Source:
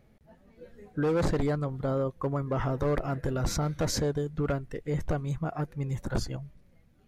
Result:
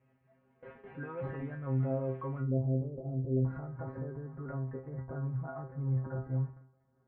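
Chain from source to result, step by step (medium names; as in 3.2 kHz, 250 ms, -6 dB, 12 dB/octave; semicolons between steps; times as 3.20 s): jump at every zero crossing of -41 dBFS; high-pass 68 Hz 12 dB/octave; gate with hold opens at -36 dBFS; steep low-pass 2.4 kHz 36 dB/octave, from 2.39 s 590 Hz, from 3.44 s 1.5 kHz; peak limiter -28 dBFS, peak gain reduction 11 dB; inharmonic resonator 130 Hz, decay 0.36 s, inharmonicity 0.002; trim +8.5 dB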